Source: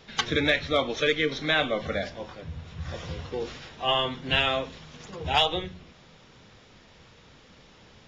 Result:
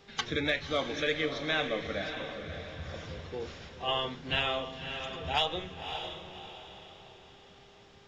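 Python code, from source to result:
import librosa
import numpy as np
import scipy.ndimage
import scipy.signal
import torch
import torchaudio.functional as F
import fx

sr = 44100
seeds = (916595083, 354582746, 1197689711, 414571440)

y = fx.echo_diffused(x, sr, ms=578, feedback_pct=41, wet_db=-7.5)
y = fx.dmg_buzz(y, sr, base_hz=400.0, harmonics=20, level_db=-56.0, tilt_db=-7, odd_only=False)
y = y * 10.0 ** (-6.5 / 20.0)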